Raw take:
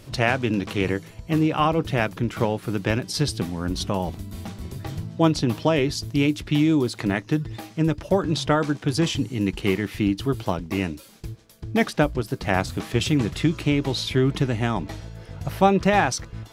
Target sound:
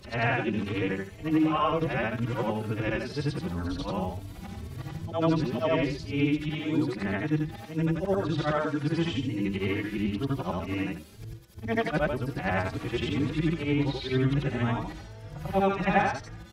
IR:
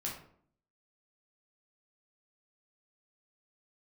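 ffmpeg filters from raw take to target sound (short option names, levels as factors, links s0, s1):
-filter_complex "[0:a]afftfilt=real='re':imag='-im':win_size=8192:overlap=0.75,acrossover=split=3500[s0][s1];[s1]acompressor=threshold=0.00224:ratio=4:attack=1:release=60[s2];[s0][s2]amix=inputs=2:normalize=0,asplit=2[s3][s4];[s4]adelay=297.4,volume=0.0316,highshelf=f=4000:g=-6.69[s5];[s3][s5]amix=inputs=2:normalize=0,acrossover=split=320|2300[s6][s7][s8];[s7]crystalizer=i=3.5:c=0[s9];[s6][s9][s8]amix=inputs=3:normalize=0,asplit=2[s10][s11];[s11]adelay=3.7,afreqshift=2[s12];[s10][s12]amix=inputs=2:normalize=1,volume=1.26"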